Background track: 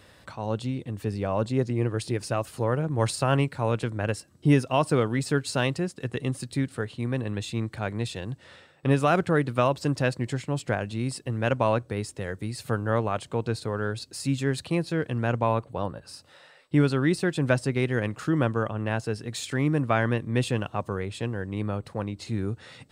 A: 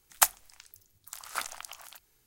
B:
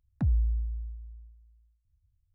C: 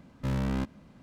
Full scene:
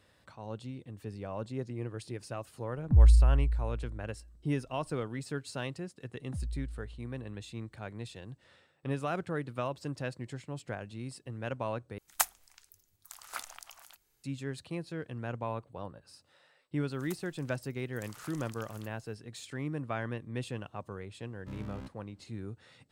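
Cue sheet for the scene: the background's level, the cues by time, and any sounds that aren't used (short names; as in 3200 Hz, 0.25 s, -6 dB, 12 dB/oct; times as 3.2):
background track -12 dB
2.7 add B -9.5 dB + tilt -4 dB/oct
6.12 add B -11.5 dB
11.98 replace with A -6 dB
16.89 add A -6.5 dB + compressor, threshold -38 dBFS
21.23 add C -14.5 dB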